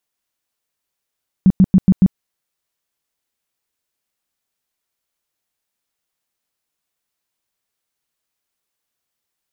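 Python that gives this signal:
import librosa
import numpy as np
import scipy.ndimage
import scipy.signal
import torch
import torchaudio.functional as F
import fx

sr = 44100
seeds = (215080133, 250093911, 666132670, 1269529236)

y = fx.tone_burst(sr, hz=188.0, cycles=8, every_s=0.14, bursts=5, level_db=-5.5)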